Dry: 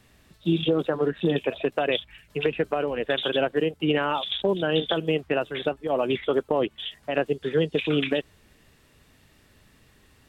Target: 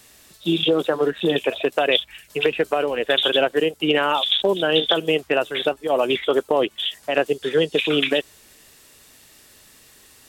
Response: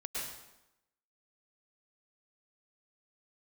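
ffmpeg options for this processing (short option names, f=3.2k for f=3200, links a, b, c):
-af "bass=f=250:g=-10,treble=f=4k:g=12,volume=5.5dB"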